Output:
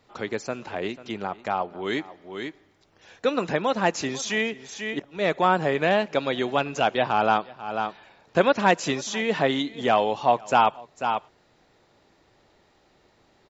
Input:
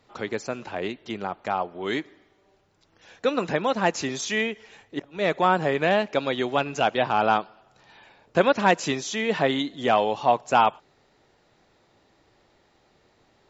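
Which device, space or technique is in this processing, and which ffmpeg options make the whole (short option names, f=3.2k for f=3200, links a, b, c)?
ducked delay: -filter_complex "[0:a]asplit=3[a][b][c];[b]adelay=492,volume=-6dB[d];[c]apad=whole_len=616681[e];[d][e]sidechaincompress=threshold=-43dB:ratio=5:attack=11:release=219[f];[a][f]amix=inputs=2:normalize=0"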